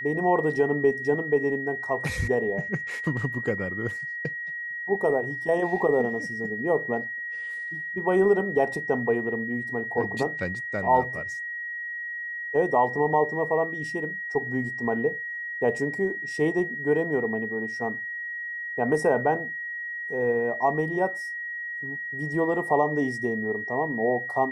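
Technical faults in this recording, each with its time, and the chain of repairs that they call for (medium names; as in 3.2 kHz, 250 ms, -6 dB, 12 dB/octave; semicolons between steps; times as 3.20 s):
whine 1.9 kHz -31 dBFS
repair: band-stop 1.9 kHz, Q 30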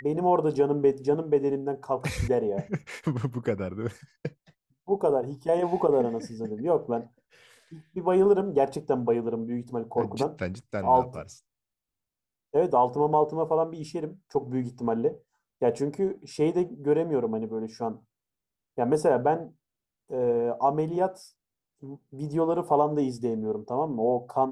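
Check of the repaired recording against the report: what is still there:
nothing left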